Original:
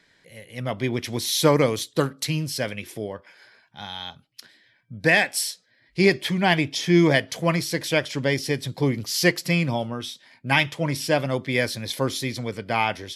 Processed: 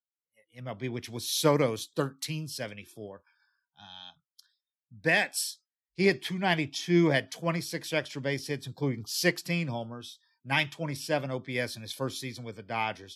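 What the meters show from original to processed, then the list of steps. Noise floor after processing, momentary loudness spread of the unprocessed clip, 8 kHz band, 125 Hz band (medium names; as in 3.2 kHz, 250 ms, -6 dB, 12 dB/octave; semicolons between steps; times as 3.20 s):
under -85 dBFS, 15 LU, -7.0 dB, -7.5 dB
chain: spectral noise reduction 29 dB; three bands expanded up and down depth 40%; trim -8 dB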